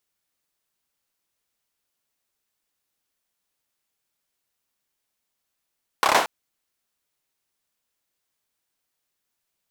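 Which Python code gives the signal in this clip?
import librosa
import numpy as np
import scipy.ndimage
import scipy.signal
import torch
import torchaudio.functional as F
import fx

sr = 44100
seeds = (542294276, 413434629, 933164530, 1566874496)

y = fx.drum_clap(sr, seeds[0], length_s=0.23, bursts=5, spacing_ms=29, hz=850.0, decay_s=0.41)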